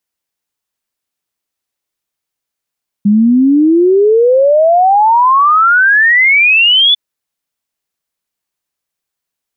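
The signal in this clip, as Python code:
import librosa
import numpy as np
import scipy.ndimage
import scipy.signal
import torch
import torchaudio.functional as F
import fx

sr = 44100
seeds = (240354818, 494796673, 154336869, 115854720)

y = fx.ess(sr, length_s=3.9, from_hz=200.0, to_hz=3500.0, level_db=-5.0)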